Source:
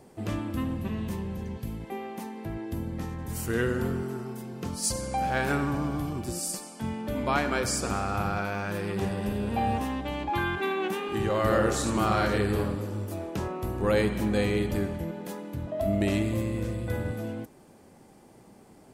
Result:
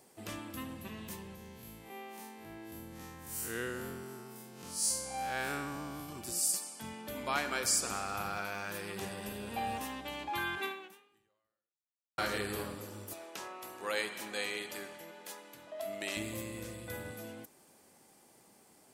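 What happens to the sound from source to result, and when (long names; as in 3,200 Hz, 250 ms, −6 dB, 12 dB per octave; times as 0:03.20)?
0:01.35–0:06.09: spectrum smeared in time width 111 ms
0:10.65–0:12.18: fade out exponential
0:13.13–0:16.17: meter weighting curve A
whole clip: spectral tilt +3 dB per octave; level −7 dB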